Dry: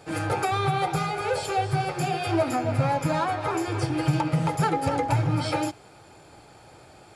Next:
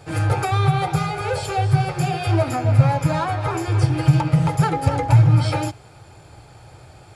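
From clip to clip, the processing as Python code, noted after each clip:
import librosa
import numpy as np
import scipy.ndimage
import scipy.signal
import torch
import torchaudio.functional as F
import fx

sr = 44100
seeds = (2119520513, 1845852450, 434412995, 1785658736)

y = fx.low_shelf_res(x, sr, hz=160.0, db=8.0, q=1.5)
y = y * 10.0 ** (2.5 / 20.0)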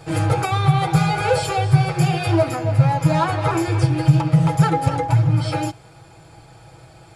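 y = fx.rider(x, sr, range_db=10, speed_s=0.5)
y = y + 0.52 * np.pad(y, (int(6.1 * sr / 1000.0), 0))[:len(y)]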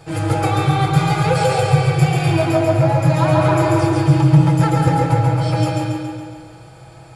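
y = fx.echo_feedback(x, sr, ms=139, feedback_pct=58, wet_db=-4)
y = fx.rev_freeverb(y, sr, rt60_s=1.6, hf_ratio=0.4, predelay_ms=100, drr_db=1.5)
y = y * 10.0 ** (-1.5 / 20.0)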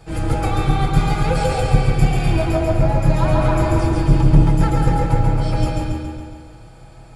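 y = fx.octave_divider(x, sr, octaves=2, level_db=3.0)
y = y * 10.0 ** (-4.0 / 20.0)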